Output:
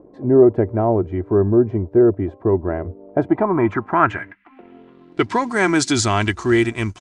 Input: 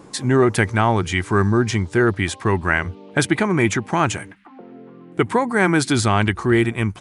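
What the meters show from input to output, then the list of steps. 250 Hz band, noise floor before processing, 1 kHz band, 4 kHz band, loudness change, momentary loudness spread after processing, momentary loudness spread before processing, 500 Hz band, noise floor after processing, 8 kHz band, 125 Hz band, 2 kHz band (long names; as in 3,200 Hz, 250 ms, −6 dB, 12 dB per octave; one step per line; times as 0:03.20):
+1.5 dB, −44 dBFS, −0.5 dB, −1.5 dB, +1.0 dB, 9 LU, 5 LU, +4.0 dB, −48 dBFS, −0.5 dB, −2.5 dB, −4.0 dB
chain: mu-law and A-law mismatch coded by A
low-pass filter sweep 540 Hz → 6,700 Hz, 0:02.97–0:05.57
comb filter 3 ms, depth 40%
level −1 dB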